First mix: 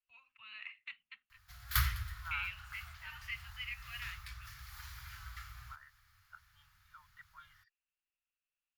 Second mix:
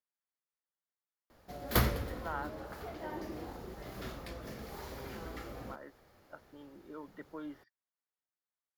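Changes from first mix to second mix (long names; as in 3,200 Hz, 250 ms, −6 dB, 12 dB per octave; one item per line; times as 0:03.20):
first voice: muted
master: remove Chebyshev band-stop filter 100–1,300 Hz, order 3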